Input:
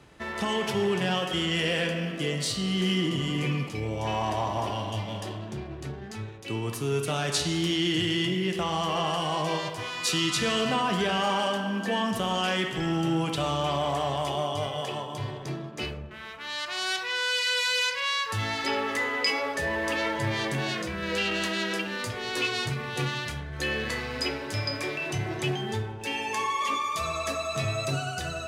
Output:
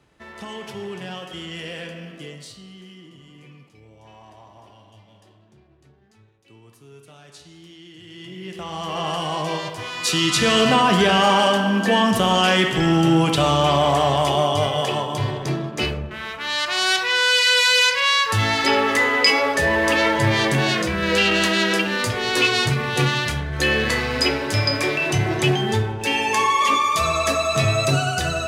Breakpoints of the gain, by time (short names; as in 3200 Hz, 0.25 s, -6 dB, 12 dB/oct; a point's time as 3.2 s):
2.17 s -6.5 dB
2.91 s -18.5 dB
7.98 s -18.5 dB
8.43 s -7 dB
9.1 s +3 dB
9.83 s +3 dB
10.61 s +10 dB